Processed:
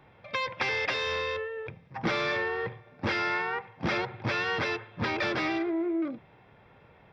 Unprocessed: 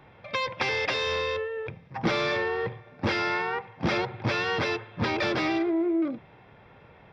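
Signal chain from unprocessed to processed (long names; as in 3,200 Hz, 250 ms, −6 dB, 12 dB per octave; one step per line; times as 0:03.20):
dynamic equaliser 1,700 Hz, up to +4 dB, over −40 dBFS, Q 1
level −4 dB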